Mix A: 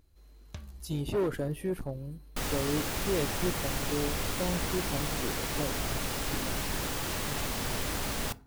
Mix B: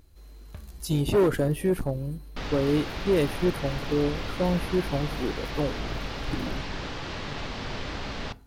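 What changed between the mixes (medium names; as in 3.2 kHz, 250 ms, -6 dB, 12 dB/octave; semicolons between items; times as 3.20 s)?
speech +8.0 dB; first sound: add low-pass 2.2 kHz; second sound: add low-pass 4.8 kHz 24 dB/octave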